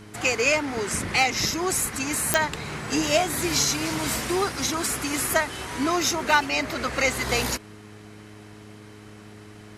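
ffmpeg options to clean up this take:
-af "adeclick=t=4,bandreject=f=105.1:t=h:w=4,bandreject=f=210.2:t=h:w=4,bandreject=f=315.3:t=h:w=4,bandreject=f=420.4:t=h:w=4"

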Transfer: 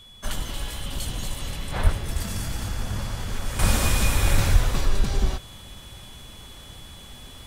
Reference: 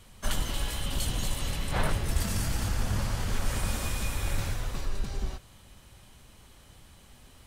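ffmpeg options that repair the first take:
-filter_complex "[0:a]bandreject=f=3.4k:w=30,asplit=3[a][b][c];[a]afade=t=out:st=1.83:d=0.02[d];[b]highpass=f=140:w=0.5412,highpass=f=140:w=1.3066,afade=t=in:st=1.83:d=0.02,afade=t=out:st=1.95:d=0.02[e];[c]afade=t=in:st=1.95:d=0.02[f];[d][e][f]amix=inputs=3:normalize=0,asplit=3[g][h][i];[g]afade=t=out:st=4.52:d=0.02[j];[h]highpass=f=140:w=0.5412,highpass=f=140:w=1.3066,afade=t=in:st=4.52:d=0.02,afade=t=out:st=4.64:d=0.02[k];[i]afade=t=in:st=4.64:d=0.02[l];[j][k][l]amix=inputs=3:normalize=0,asetnsamples=n=441:p=0,asendcmd='3.59 volume volume -10dB',volume=0dB"

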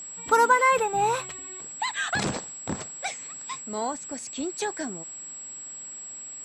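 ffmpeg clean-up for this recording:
-af "bandreject=f=7.7k:w=30"

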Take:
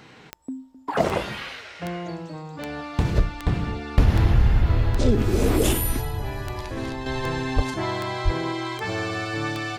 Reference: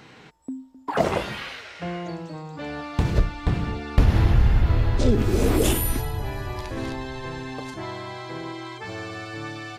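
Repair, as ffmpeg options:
-filter_complex "[0:a]adeclick=t=4,asplit=3[a][b][c];[a]afade=t=out:st=7.55:d=0.02[d];[b]highpass=f=140:w=0.5412,highpass=f=140:w=1.3066,afade=t=in:st=7.55:d=0.02,afade=t=out:st=7.67:d=0.02[e];[c]afade=t=in:st=7.67:d=0.02[f];[d][e][f]amix=inputs=3:normalize=0,asplit=3[g][h][i];[g]afade=t=out:st=8.24:d=0.02[j];[h]highpass=f=140:w=0.5412,highpass=f=140:w=1.3066,afade=t=in:st=8.24:d=0.02,afade=t=out:st=8.36:d=0.02[k];[i]afade=t=in:st=8.36:d=0.02[l];[j][k][l]amix=inputs=3:normalize=0,asetnsamples=n=441:p=0,asendcmd='7.06 volume volume -6.5dB',volume=0dB"

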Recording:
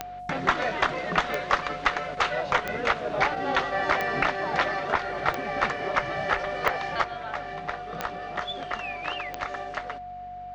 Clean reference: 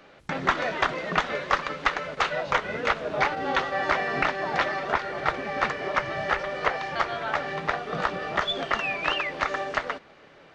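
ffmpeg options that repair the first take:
-af "adeclick=t=4,bandreject=f=47.9:t=h:w=4,bandreject=f=95.8:t=h:w=4,bandreject=f=143.7:t=h:w=4,bandreject=f=191.6:t=h:w=4,bandreject=f=239.5:t=h:w=4,bandreject=f=720:w=30,asetnsamples=n=441:p=0,asendcmd='7.04 volume volume 6.5dB',volume=0dB"

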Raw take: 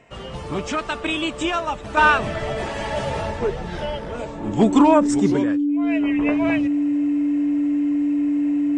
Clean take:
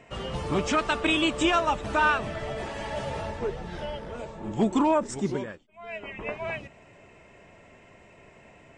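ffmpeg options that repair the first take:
-af "bandreject=f=290:w=30,asetnsamples=n=441:p=0,asendcmd='1.97 volume volume -7.5dB',volume=0dB"

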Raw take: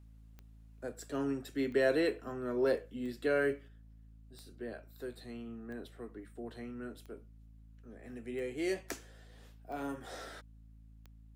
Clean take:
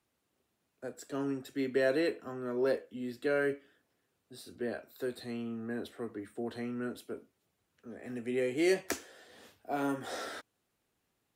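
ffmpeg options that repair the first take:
-af "adeclick=t=4,bandreject=f=54.6:t=h:w=4,bandreject=f=109.2:t=h:w=4,bandreject=f=163.8:t=h:w=4,bandreject=f=218.4:t=h:w=4,bandreject=f=273:t=h:w=4,asetnsamples=n=441:p=0,asendcmd='3.68 volume volume 6.5dB',volume=0dB"

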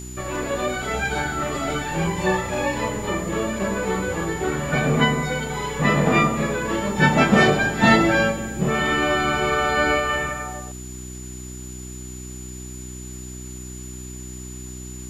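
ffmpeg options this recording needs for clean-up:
-af "bandreject=f=62.7:t=h:w=4,bandreject=f=125.4:t=h:w=4,bandreject=f=188.1:t=h:w=4,bandreject=f=250.8:t=h:w=4,bandreject=f=313.5:t=h:w=4,bandreject=f=376.2:t=h:w=4,bandreject=f=7k:w=30,afwtdn=0.0045"

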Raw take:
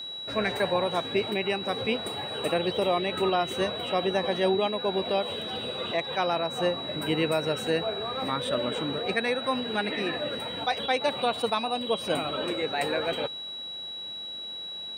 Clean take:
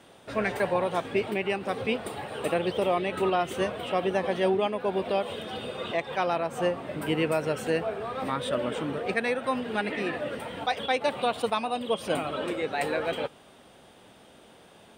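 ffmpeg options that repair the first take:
-af "bandreject=f=3.9k:w=30"

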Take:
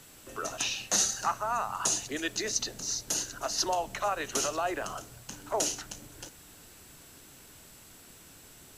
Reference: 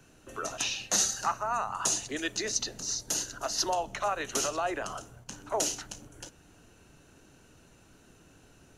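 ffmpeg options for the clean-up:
-af "bandreject=f=7.7k:w=30,afftdn=nr=6:nf=-53"

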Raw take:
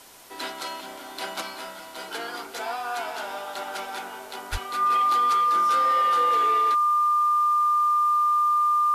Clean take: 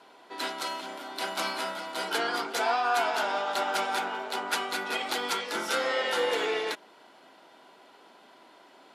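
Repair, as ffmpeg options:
-filter_complex "[0:a]bandreject=f=1.2k:w=30,asplit=3[a][b][c];[a]afade=t=out:st=4.51:d=0.02[d];[b]highpass=f=140:w=0.5412,highpass=f=140:w=1.3066,afade=t=in:st=4.51:d=0.02,afade=t=out:st=4.63:d=0.02[e];[c]afade=t=in:st=4.63:d=0.02[f];[d][e][f]amix=inputs=3:normalize=0,afwtdn=0.0035,asetnsamples=n=441:p=0,asendcmd='1.41 volume volume 4.5dB',volume=0dB"

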